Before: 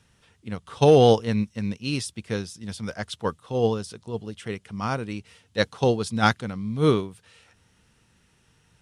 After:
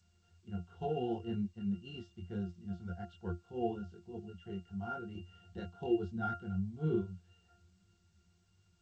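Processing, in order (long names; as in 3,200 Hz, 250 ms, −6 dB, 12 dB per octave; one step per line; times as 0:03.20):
dynamic equaliser 260 Hz, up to +5 dB, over −33 dBFS, Q 2.3
brickwall limiter −11 dBFS, peak gain reduction 7.5 dB
0:05.15–0:06.37: upward compression, threshold −27 dBFS
multi-voice chorus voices 4, 1.5 Hz, delay 23 ms, depth 3 ms
resonances in every octave F, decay 0.17 s
level +3.5 dB
G.722 64 kbit/s 16,000 Hz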